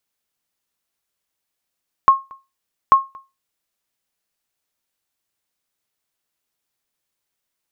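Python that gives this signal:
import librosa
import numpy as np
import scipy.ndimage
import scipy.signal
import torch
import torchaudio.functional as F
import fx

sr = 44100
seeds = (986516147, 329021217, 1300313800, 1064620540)

y = fx.sonar_ping(sr, hz=1080.0, decay_s=0.24, every_s=0.84, pings=2, echo_s=0.23, echo_db=-28.0, level_db=-2.5)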